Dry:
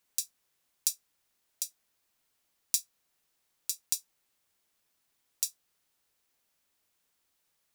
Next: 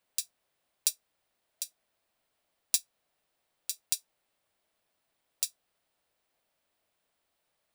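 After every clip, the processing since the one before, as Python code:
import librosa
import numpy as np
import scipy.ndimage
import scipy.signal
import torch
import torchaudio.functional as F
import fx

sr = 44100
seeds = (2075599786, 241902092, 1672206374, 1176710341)

y = fx.graphic_eq_15(x, sr, hz=(630, 6300, 16000), db=(8, -7, -11))
y = fx.upward_expand(y, sr, threshold_db=-44.0, expansion=1.5)
y = y * librosa.db_to_amplitude(7.5)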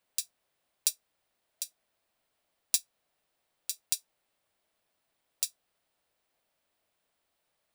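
y = x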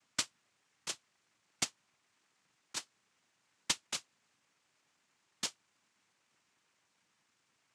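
y = fx.lower_of_two(x, sr, delay_ms=0.67)
y = fx.over_compress(y, sr, threshold_db=-31.0, ratio=-0.5)
y = fx.noise_vocoder(y, sr, seeds[0], bands=4)
y = y * librosa.db_to_amplitude(3.0)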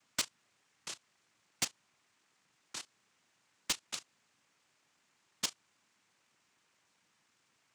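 y = fx.level_steps(x, sr, step_db=17)
y = 10.0 ** (-35.5 / 20.0) * np.tanh(y / 10.0 ** (-35.5 / 20.0))
y = y * librosa.db_to_amplitude(10.0)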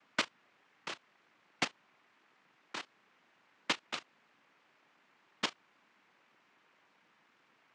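y = fx.bandpass_edges(x, sr, low_hz=200.0, high_hz=2500.0)
y = y * librosa.db_to_amplitude(8.5)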